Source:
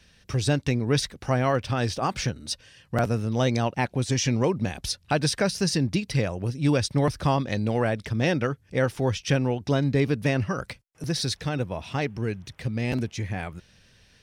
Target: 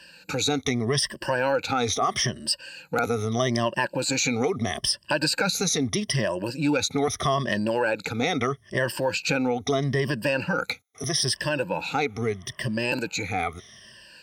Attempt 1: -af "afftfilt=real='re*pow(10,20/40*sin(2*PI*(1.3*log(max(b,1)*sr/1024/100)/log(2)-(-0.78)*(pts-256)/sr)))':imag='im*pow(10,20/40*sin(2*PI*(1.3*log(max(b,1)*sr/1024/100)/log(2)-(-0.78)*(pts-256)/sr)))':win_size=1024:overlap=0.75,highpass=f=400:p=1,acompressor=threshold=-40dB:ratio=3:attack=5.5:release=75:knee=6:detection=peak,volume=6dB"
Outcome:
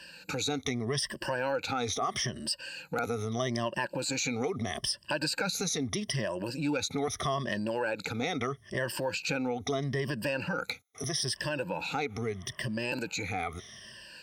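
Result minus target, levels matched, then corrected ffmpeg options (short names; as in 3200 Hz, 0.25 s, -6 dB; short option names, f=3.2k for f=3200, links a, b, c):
compressor: peak gain reduction +7.5 dB
-af "afftfilt=real='re*pow(10,20/40*sin(2*PI*(1.3*log(max(b,1)*sr/1024/100)/log(2)-(-0.78)*(pts-256)/sr)))':imag='im*pow(10,20/40*sin(2*PI*(1.3*log(max(b,1)*sr/1024/100)/log(2)-(-0.78)*(pts-256)/sr)))':win_size=1024:overlap=0.75,highpass=f=400:p=1,acompressor=threshold=-29dB:ratio=3:attack=5.5:release=75:knee=6:detection=peak,volume=6dB"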